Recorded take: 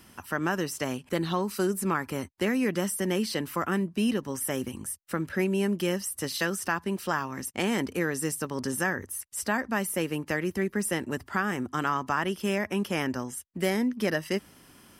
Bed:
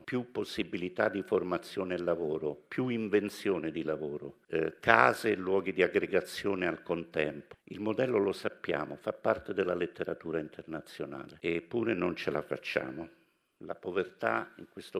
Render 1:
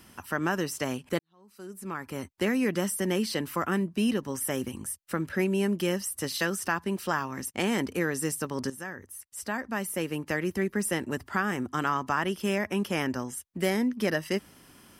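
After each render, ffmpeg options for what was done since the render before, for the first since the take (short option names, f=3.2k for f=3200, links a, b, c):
-filter_complex "[0:a]asplit=3[a][b][c];[a]atrim=end=1.19,asetpts=PTS-STARTPTS,afade=t=out:st=1.186:d=0.004:c=hsin[d];[b]atrim=start=1.19:end=8.7,asetpts=PTS-STARTPTS,afade=t=in:d=1.18:c=qua,afade=t=out:st=7.506:d=0.004:c=hsin:silence=0.223872[e];[c]atrim=start=8.7,asetpts=PTS-STARTPTS,afade=t=in:d=1.77:silence=0.223872[f];[d][e][f]concat=n=3:v=0:a=1"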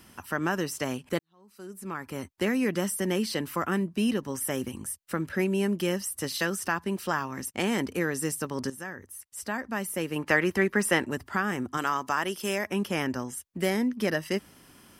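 -filter_complex "[0:a]asettb=1/sr,asplit=3[a][b][c];[a]atrim=end=10.164[d];[b]atrim=start=10.16:end=11.07,asetpts=PTS-STARTPTS,afade=t=in:d=0.004:c=qsin,afade=t=out:st=0.906:d=0.004:c=qsin,equalizer=f=1.4k:w=0.34:g=9[e];[c]atrim=start=11.066[f];[d][e]acrossfade=d=0.004:c1=hsin:c2=qsin[g];[g][f]acrossfade=d=0.004:c1=qsin:c2=hsin,asettb=1/sr,asplit=3[h][i][j];[h]atrim=end=11.774[k];[i]atrim=start=11.77:end=12.7,asetpts=PTS-STARTPTS,afade=t=in:d=0.004:c=qsin,afade=t=out:st=0.926:d=0.004:c=qsin,bass=f=250:g=-8,treble=f=4k:g=6[l];[j]atrim=start=12.696[m];[k][l]acrossfade=d=0.004:c1=hsin:c2=qsin[n];[n][m]acrossfade=d=0.004:c1=qsin:c2=hsin"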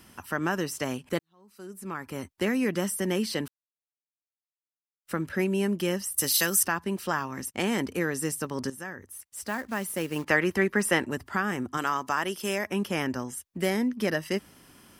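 -filter_complex "[0:a]asettb=1/sr,asplit=3[a][b][c];[a]atrim=end=6.144[d];[b]atrim=start=6.14:end=6.63,asetpts=PTS-STARTPTS,afade=t=in:d=0.004:c=qsin,afade=t=out:st=0.486:d=0.004:c=qsin,aemphasis=mode=production:type=75fm[e];[c]atrim=start=6.626[f];[d][e]acrossfade=d=0.004:c1=hsin:c2=qsin[g];[g][f]acrossfade=d=0.004:c1=qsin:c2=hsin,asettb=1/sr,asplit=3[h][i][j];[h]atrim=end=9.124[k];[i]atrim=start=9.12:end=10.25,asetpts=PTS-STARTPTS,afade=t=in:d=0.004:c=qsin,afade=t=out:st=1.126:d=0.004:c=qsin,acrusher=bits=4:mode=log:mix=0:aa=0.000001[l];[j]atrim=start=10.246[m];[k][l]acrossfade=d=0.004:c1=hsin:c2=qsin[n];[n][m]acrossfade=d=0.004:c1=qsin:c2=hsin,asplit=3[o][p][q];[o]atrim=end=3.48,asetpts=PTS-STARTPTS,afade=t=out:st=3.476:d=0.004:c=hsin[r];[p]atrim=start=3.48:end=5.05,asetpts=PTS-STARTPTS,volume=0[s];[q]atrim=start=5.05,asetpts=PTS-STARTPTS,afade=t=in:d=0.004:c=hsin[t];[r][s][t]concat=n=3:v=0:a=1"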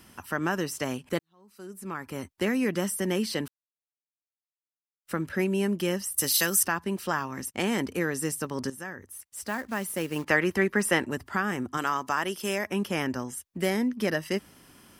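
-af anull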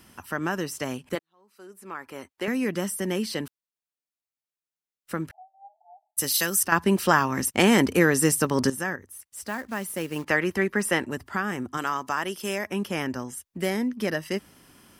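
-filter_complex "[0:a]asettb=1/sr,asplit=3[a][b][c];[a]atrim=end=1.154[d];[b]atrim=start=1.15:end=2.48,asetpts=PTS-STARTPTS,afade=t=in:d=0.004:c=qsin,afade=t=out:st=1.326:d=0.004:c=qsin,bass=f=250:g=-14,treble=f=4k:g=-5[e];[c]atrim=start=2.476[f];[d][e]acrossfade=d=0.004:c1=hsin:c2=qsin[g];[g][f]acrossfade=d=0.004:c1=qsin:c2=hsin,asettb=1/sr,asplit=3[h][i][j];[h]atrim=end=5.314[k];[i]atrim=start=5.31:end=6.17,asetpts=PTS-STARTPTS,afade=t=in:d=0.004:c=qsin,afade=t=out:st=0.856:d=0.004:c=qsin,asuperpass=centerf=740:order=20:qfactor=3.2[l];[j]atrim=start=6.166[m];[k][l]acrossfade=d=0.004:c1=hsin:c2=qsin[n];[n][m]acrossfade=d=0.004:c1=qsin:c2=hsin,asplit=3[o][p][q];[o]atrim=end=6.722[r];[p]atrim=start=6.718:end=8.962,asetpts=PTS-STARTPTS,volume=9dB[s];[q]atrim=start=8.958[t];[r][s]acrossfade=d=0.004:c1=hsin:c2=hsin[u];[u][t]acrossfade=d=0.004:c1=hsin:c2=hsin"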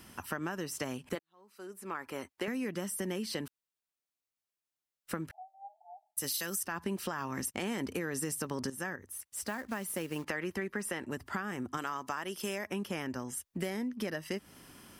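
-af "alimiter=limit=-13dB:level=0:latency=1:release=67,acompressor=threshold=-33dB:ratio=6"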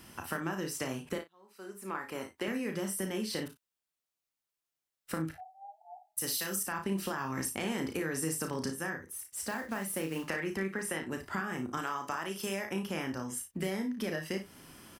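-filter_complex "[0:a]asplit=2[a][b];[b]adelay=37,volume=-10dB[c];[a][c]amix=inputs=2:normalize=0,aecho=1:1:31|56:0.398|0.316"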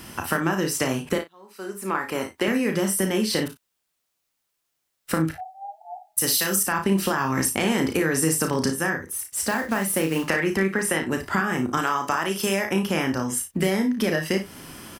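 -af "volume=12dB"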